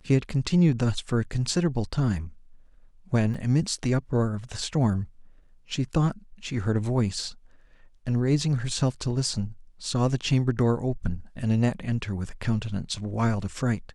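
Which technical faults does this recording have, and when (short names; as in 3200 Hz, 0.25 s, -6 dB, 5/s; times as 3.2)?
3.34 gap 4.3 ms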